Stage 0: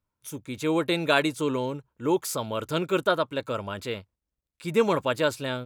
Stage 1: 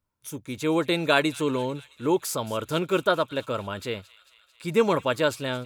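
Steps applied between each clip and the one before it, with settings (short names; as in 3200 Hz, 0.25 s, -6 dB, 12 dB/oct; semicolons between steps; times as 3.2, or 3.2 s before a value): thin delay 0.222 s, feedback 68%, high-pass 2500 Hz, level -16.5 dB; gain +1 dB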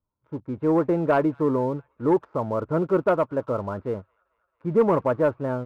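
LPF 1200 Hz 24 dB/oct; sample leveller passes 1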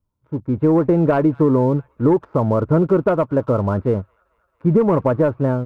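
compressor, threshold -22 dBFS, peak gain reduction 8 dB; low shelf 290 Hz +9.5 dB; AGC gain up to 5 dB; gain +1.5 dB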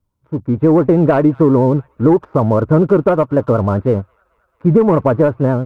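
vibrato 9.3 Hz 81 cents; gain +4 dB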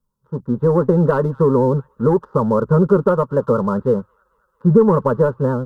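fixed phaser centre 460 Hz, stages 8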